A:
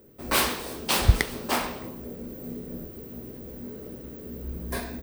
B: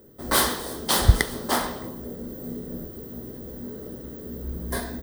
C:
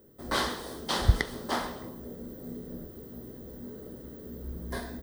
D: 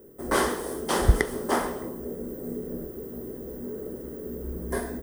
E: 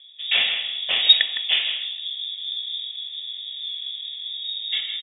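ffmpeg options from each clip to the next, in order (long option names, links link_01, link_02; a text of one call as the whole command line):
ffmpeg -i in.wav -af "superequalizer=12b=0.282:16b=1.41,volume=2.5dB" out.wav
ffmpeg -i in.wav -filter_complex "[0:a]acrossover=split=6300[link_01][link_02];[link_02]acompressor=threshold=-42dB:ratio=4:attack=1:release=60[link_03];[link_01][link_03]amix=inputs=2:normalize=0,volume=-6dB" out.wav
ffmpeg -i in.wav -af "equalizer=frequency=100:width_type=o:width=0.67:gain=-6,equalizer=frequency=400:width_type=o:width=0.67:gain=7,equalizer=frequency=4000:width_type=o:width=0.67:gain=-12,equalizer=frequency=10000:width_type=o:width=0.67:gain=7,volume=4.5dB" out.wav
ffmpeg -i in.wav -filter_complex "[0:a]asplit=2[link_01][link_02];[link_02]adelay=160,highpass=300,lowpass=3400,asoftclip=type=hard:threshold=-14dB,volume=-8dB[link_03];[link_01][link_03]amix=inputs=2:normalize=0,lowpass=frequency=3200:width_type=q:width=0.5098,lowpass=frequency=3200:width_type=q:width=0.6013,lowpass=frequency=3200:width_type=q:width=0.9,lowpass=frequency=3200:width_type=q:width=2.563,afreqshift=-3800,volume=3.5dB" out.wav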